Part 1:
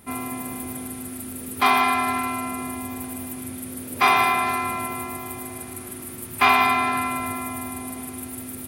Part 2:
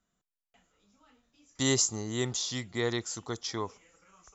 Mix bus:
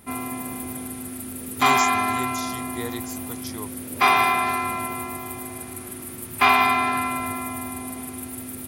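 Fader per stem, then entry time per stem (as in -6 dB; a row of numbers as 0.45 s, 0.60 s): 0.0 dB, -3.0 dB; 0.00 s, 0.00 s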